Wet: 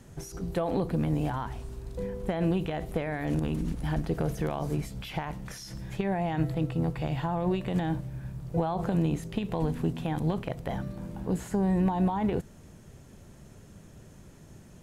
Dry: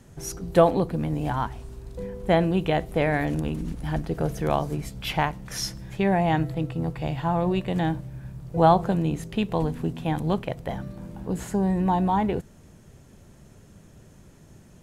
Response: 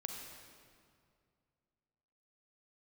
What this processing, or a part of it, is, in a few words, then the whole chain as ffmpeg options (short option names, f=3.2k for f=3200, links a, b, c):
de-esser from a sidechain: -filter_complex "[0:a]asplit=2[a][b];[b]highpass=f=6.4k:p=1,apad=whole_len=653812[c];[a][c]sidechaincompress=threshold=-45dB:ratio=6:attack=2.3:release=44"